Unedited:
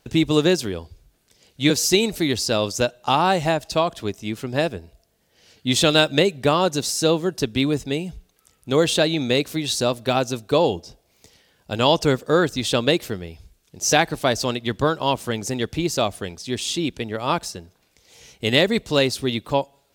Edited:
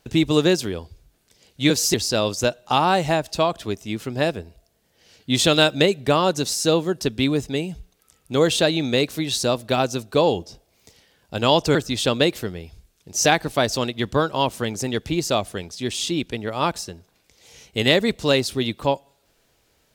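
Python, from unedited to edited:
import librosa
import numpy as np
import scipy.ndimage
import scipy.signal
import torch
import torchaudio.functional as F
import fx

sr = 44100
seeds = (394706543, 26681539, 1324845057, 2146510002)

y = fx.edit(x, sr, fx.cut(start_s=1.94, length_s=0.37),
    fx.cut(start_s=12.12, length_s=0.3), tone=tone)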